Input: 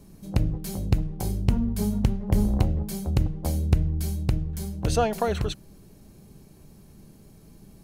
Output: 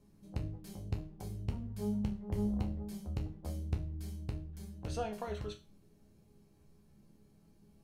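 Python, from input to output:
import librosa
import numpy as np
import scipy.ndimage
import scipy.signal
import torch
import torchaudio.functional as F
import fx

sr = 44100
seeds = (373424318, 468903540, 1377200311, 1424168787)

y = fx.high_shelf(x, sr, hz=8500.0, db=-8.5)
y = fx.resonator_bank(y, sr, root=37, chord='minor', decay_s=0.31)
y = F.gain(torch.from_numpy(y), -3.0).numpy()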